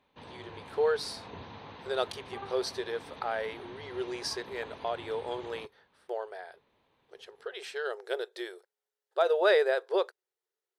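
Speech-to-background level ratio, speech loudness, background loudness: 14.5 dB, -32.5 LUFS, -47.0 LUFS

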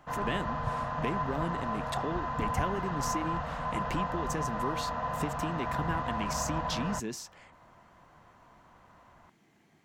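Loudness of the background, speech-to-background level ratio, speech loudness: -34.5 LUFS, -2.5 dB, -37.0 LUFS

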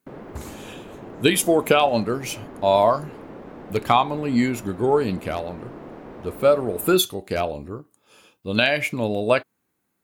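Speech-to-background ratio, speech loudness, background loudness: 18.5 dB, -21.5 LUFS, -40.0 LUFS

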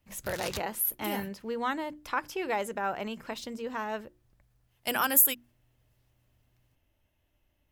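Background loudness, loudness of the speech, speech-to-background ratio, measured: -40.0 LUFS, -30.0 LUFS, 10.0 dB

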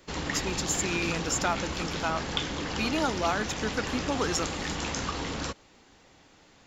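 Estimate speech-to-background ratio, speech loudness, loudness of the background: 1.5 dB, -31.0 LUFS, -32.5 LUFS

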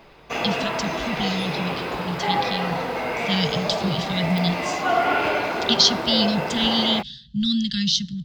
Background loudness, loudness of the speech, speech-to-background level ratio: -25.5 LUFS, -23.5 LUFS, 2.0 dB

